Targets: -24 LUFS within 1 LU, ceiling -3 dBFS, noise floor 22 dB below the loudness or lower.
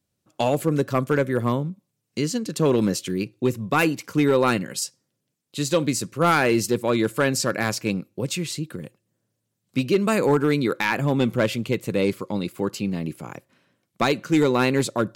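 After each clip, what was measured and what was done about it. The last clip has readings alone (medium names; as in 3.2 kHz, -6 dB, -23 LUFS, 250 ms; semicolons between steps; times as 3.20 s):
clipped samples 0.4%; clipping level -11.5 dBFS; loudness -23.0 LUFS; peak level -11.5 dBFS; loudness target -24.0 LUFS
-> clip repair -11.5 dBFS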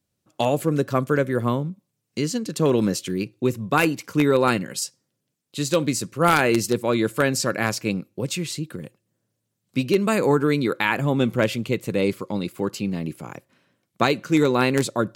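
clipped samples 0.0%; loudness -23.0 LUFS; peak level -2.5 dBFS; loudness target -24.0 LUFS
-> trim -1 dB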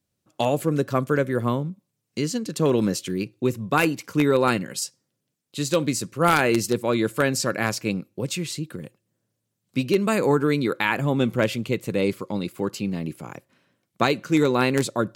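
loudness -24.0 LUFS; peak level -3.5 dBFS; noise floor -79 dBFS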